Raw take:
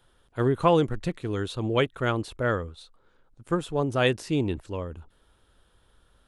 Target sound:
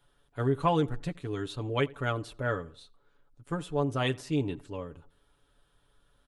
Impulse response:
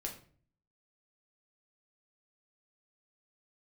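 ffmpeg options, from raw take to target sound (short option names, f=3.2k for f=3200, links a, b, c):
-filter_complex "[0:a]aecho=1:1:7:0.65,asplit=2[a][b];[b]adelay=84,lowpass=f=2.1k:p=1,volume=-22dB,asplit=2[c][d];[d]adelay=84,lowpass=f=2.1k:p=1,volume=0.43,asplit=2[e][f];[f]adelay=84,lowpass=f=2.1k:p=1,volume=0.43[g];[c][e][g]amix=inputs=3:normalize=0[h];[a][h]amix=inputs=2:normalize=0,volume=-6.5dB"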